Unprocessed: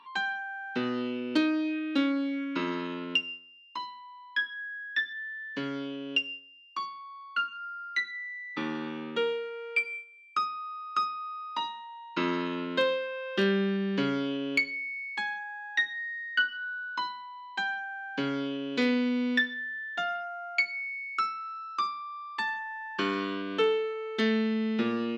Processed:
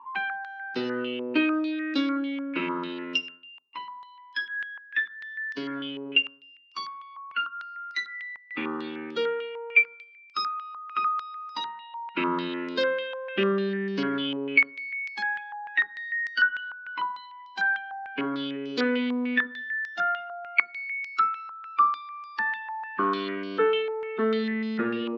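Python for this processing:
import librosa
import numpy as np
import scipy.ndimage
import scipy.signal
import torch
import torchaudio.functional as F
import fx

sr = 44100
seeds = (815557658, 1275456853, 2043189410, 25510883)

y = fx.spec_quant(x, sr, step_db=15)
y = fx.dynamic_eq(y, sr, hz=380.0, q=1.1, threshold_db=-43.0, ratio=4.0, max_db=5)
y = fx.filter_held_lowpass(y, sr, hz=6.7, low_hz=970.0, high_hz=5100.0)
y = F.gain(torch.from_numpy(y), -2.5).numpy()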